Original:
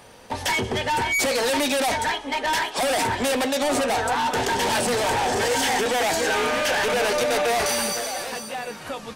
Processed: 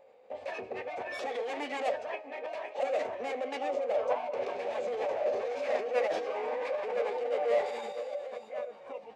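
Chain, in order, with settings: vowel filter a; formant shift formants -4 st; de-hum 312.4 Hz, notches 32

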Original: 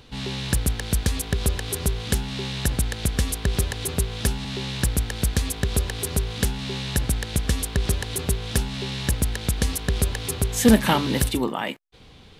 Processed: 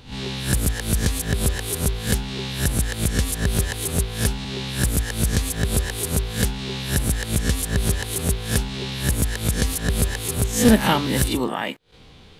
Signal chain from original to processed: reverse spectral sustain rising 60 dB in 0.35 s

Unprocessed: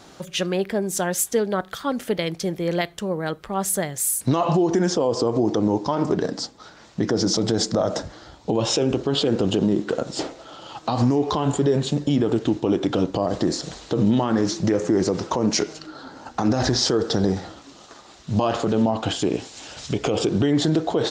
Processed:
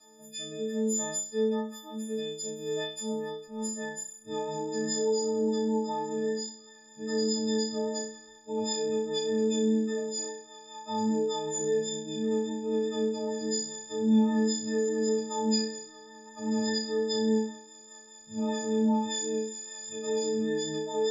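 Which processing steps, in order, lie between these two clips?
partials quantised in pitch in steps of 6 st; tone controls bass -6 dB, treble +11 dB; harmonic-percussive split percussive -12 dB; tilt EQ -2.5 dB/octave; low-pass that closes with the level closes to 1.9 kHz, closed at -3.5 dBFS; chord resonator A3 minor, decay 0.33 s; rotary cabinet horn 0.6 Hz, later 5 Hz, at 3.35 s; flutter echo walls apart 5.5 m, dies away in 0.43 s

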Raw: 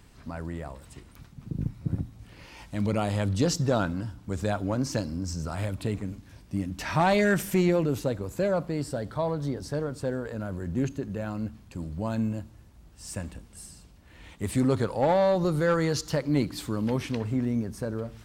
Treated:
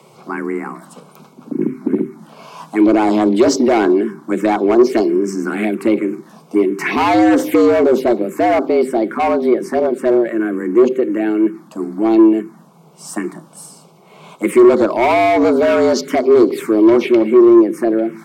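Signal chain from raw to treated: frequency shift +110 Hz; FFT filter 180 Hz 0 dB, 1.1 kHz +13 dB, 4.3 kHz +3 dB; in parallel at +1 dB: peak limiter -12.5 dBFS, peak gain reduction 11 dB; on the sum: de-hum 130.2 Hz, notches 4; touch-sensitive phaser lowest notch 280 Hz, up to 2.4 kHz, full sweep at -10.5 dBFS; hard clipper -11.5 dBFS, distortion -11 dB; small resonant body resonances 350/2200 Hz, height 13 dB, ringing for 30 ms; saturation -2 dBFS, distortion -19 dB

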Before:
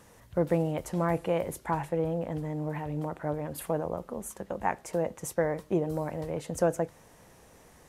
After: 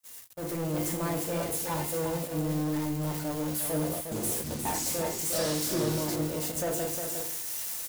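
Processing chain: zero-crossing glitches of -24 dBFS; feedback comb 350 Hz, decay 0.85 s, mix 80%; FDN reverb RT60 0.53 s, low-frequency decay 1.55×, high-frequency decay 0.85×, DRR 3 dB; gate -41 dBFS, range -29 dB; waveshaping leveller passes 3; peak limiter -36.5 dBFS, peak gain reduction 11.5 dB; 3.79–6.16 s: ever faster or slower copies 323 ms, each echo -6 st, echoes 2; delay 358 ms -6.5 dB; level rider gain up to 10 dB

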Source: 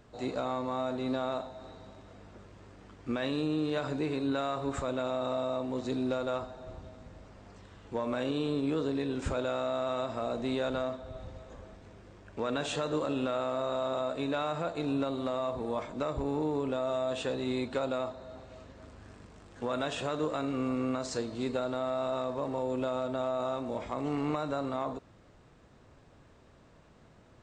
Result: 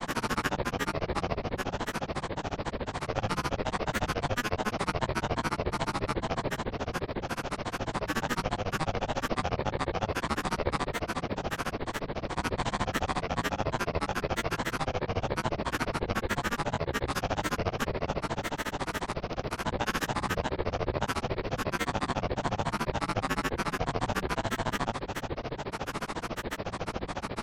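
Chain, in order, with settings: spectral levelling over time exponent 0.2; ring modulator 410 Hz; granulator 70 ms, grains 14 per s, pitch spread up and down by 12 st; hum notches 60/120/180 Hz

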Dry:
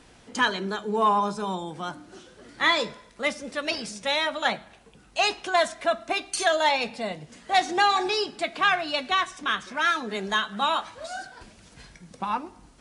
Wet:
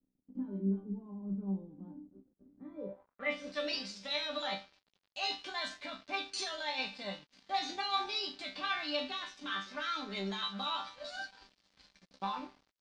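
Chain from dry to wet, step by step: in parallel at 0 dB: compressor with a negative ratio -29 dBFS, ratio -0.5; on the sum: chord resonator G3 sus4, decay 0.3 s; crossover distortion -56.5 dBFS; low-pass sweep 260 Hz -> 4.5 kHz, 2.71–3.47 s

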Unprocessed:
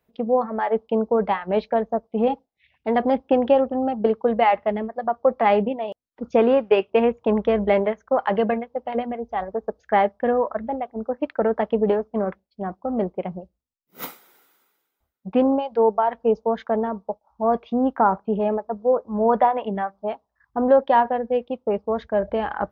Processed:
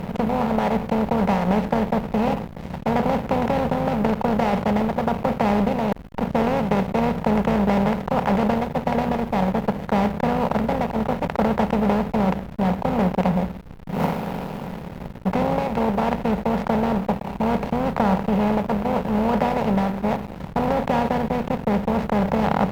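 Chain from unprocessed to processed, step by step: spectral levelling over time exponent 0.2; resonant low shelf 220 Hz +13.5 dB, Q 3; hysteresis with a dead band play -11.5 dBFS; trim -9 dB

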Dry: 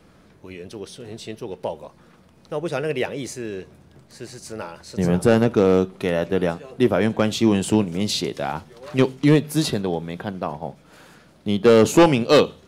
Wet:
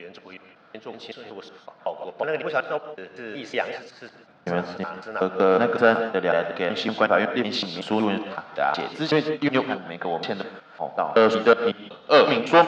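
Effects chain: slices played last to first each 186 ms, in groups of 4; cabinet simulation 290–4300 Hz, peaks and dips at 360 Hz -10 dB, 710 Hz +6 dB, 1.4 kHz +9 dB; gated-style reverb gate 190 ms rising, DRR 9 dB

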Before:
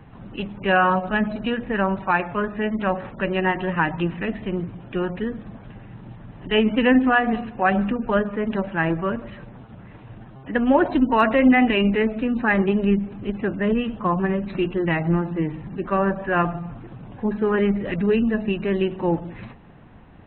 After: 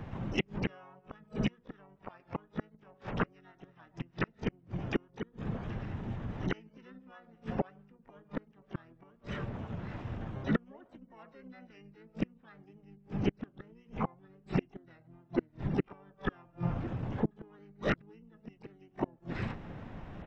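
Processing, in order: inverted gate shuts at -18 dBFS, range -39 dB; harmony voices -5 st -2 dB, +12 st -13 dB

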